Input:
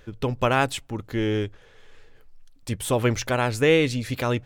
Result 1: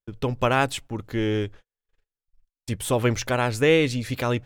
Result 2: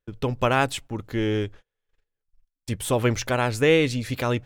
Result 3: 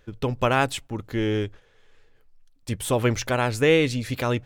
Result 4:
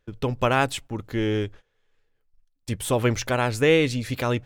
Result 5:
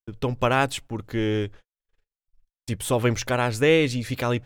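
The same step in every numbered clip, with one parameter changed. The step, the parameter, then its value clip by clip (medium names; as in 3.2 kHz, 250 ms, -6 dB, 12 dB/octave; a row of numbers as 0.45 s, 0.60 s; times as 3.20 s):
gate, range: -46 dB, -34 dB, -7 dB, -20 dB, -59 dB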